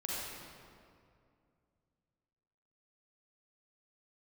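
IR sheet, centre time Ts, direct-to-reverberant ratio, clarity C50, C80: 0.15 s, -6.0 dB, -4.5 dB, -2.0 dB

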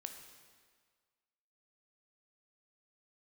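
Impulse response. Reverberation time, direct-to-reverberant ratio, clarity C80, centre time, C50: 1.7 s, 5.0 dB, 8.0 dB, 32 ms, 6.5 dB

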